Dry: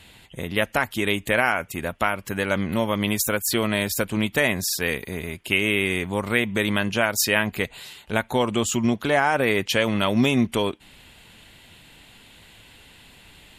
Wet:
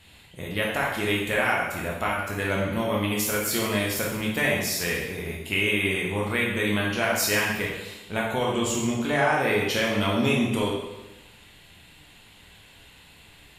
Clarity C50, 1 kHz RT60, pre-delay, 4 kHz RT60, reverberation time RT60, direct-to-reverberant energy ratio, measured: 1.5 dB, 1.0 s, 5 ms, 0.95 s, 1.0 s, −4.0 dB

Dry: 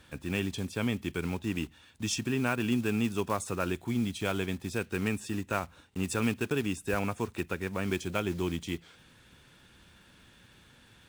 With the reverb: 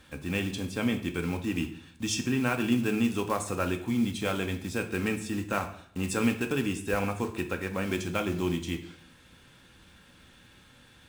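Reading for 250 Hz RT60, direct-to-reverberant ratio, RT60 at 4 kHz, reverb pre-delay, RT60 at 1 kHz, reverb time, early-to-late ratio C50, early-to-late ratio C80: 0.65 s, 5.0 dB, 0.50 s, 4 ms, 0.60 s, 0.65 s, 11.5 dB, 14.5 dB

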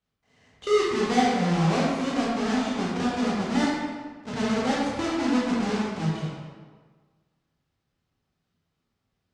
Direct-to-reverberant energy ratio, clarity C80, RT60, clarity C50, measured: −6.5 dB, 1.0 dB, 1.5 s, −1.5 dB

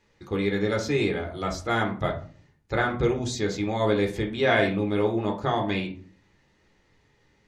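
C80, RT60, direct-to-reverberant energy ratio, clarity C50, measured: 15.5 dB, 0.40 s, 1.0 dB, 10.5 dB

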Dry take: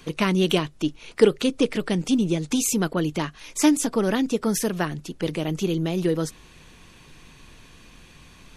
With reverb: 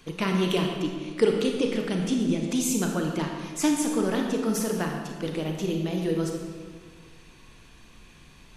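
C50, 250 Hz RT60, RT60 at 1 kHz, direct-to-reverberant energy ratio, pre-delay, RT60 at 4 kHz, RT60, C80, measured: 3.0 dB, 1.9 s, 1.6 s, 1.5 dB, 28 ms, 1.1 s, 1.7 s, 4.5 dB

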